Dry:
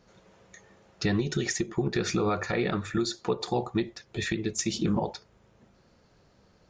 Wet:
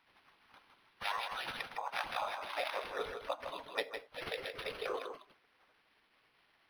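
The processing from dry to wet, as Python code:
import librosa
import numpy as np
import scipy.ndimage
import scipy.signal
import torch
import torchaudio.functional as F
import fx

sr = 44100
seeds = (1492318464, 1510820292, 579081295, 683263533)

y = fx.spec_gate(x, sr, threshold_db=-20, keep='weak')
y = fx.filter_sweep_highpass(y, sr, from_hz=900.0, to_hz=440.0, start_s=1.94, end_s=2.93, q=2.6)
y = y + 10.0 ** (-7.0 / 20.0) * np.pad(y, (int(159 * sr / 1000.0), 0))[:len(y)]
y = np.interp(np.arange(len(y)), np.arange(len(y))[::6], y[::6])
y = F.gain(torch.from_numpy(y), 3.5).numpy()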